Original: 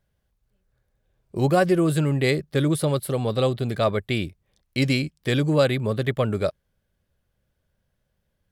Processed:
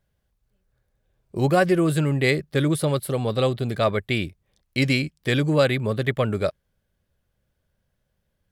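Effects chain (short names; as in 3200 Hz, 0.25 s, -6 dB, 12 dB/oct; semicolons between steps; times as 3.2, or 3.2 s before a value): dynamic EQ 2000 Hz, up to +4 dB, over -37 dBFS, Q 1.3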